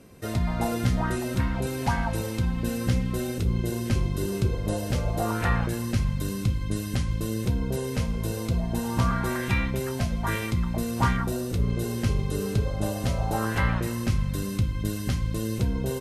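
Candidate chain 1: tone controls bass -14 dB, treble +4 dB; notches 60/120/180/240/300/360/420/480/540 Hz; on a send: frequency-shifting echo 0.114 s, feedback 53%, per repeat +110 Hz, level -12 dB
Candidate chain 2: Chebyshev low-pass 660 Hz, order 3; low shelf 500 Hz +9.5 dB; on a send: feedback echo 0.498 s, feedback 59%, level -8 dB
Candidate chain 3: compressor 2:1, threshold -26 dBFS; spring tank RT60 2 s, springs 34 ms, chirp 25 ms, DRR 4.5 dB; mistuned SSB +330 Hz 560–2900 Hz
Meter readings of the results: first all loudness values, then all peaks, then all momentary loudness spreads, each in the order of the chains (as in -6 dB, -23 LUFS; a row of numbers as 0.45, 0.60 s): -32.0, -19.5, -37.0 LUFS; -14.0, -3.0, -17.5 dBFS; 6, 3, 11 LU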